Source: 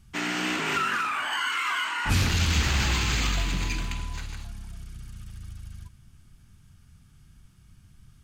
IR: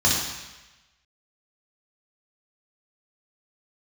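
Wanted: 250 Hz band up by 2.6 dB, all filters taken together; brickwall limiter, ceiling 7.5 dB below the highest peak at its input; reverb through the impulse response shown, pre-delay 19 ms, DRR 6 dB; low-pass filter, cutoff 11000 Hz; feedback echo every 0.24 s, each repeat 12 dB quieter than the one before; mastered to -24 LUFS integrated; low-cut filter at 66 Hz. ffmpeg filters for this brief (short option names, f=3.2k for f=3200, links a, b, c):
-filter_complex "[0:a]highpass=66,lowpass=11k,equalizer=f=250:t=o:g=3.5,alimiter=limit=-19.5dB:level=0:latency=1,aecho=1:1:240|480|720:0.251|0.0628|0.0157,asplit=2[a][b];[1:a]atrim=start_sample=2205,adelay=19[c];[b][c]afir=irnorm=-1:irlink=0,volume=-22.5dB[d];[a][d]amix=inputs=2:normalize=0,volume=3dB"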